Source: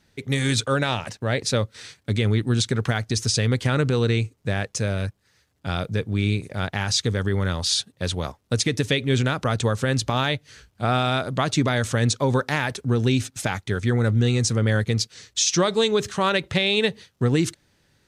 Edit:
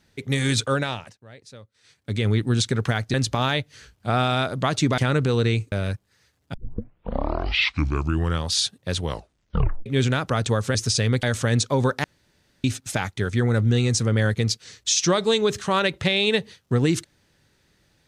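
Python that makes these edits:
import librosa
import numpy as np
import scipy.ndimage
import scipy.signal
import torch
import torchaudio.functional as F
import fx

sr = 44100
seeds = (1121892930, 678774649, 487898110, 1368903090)

y = fx.edit(x, sr, fx.fade_down_up(start_s=0.7, length_s=1.6, db=-22.0, fade_s=0.48),
    fx.swap(start_s=3.14, length_s=0.48, other_s=9.89, other_length_s=1.84),
    fx.cut(start_s=4.36, length_s=0.5),
    fx.tape_start(start_s=5.68, length_s=1.97),
    fx.tape_stop(start_s=8.15, length_s=0.85),
    fx.room_tone_fill(start_s=12.54, length_s=0.6), tone=tone)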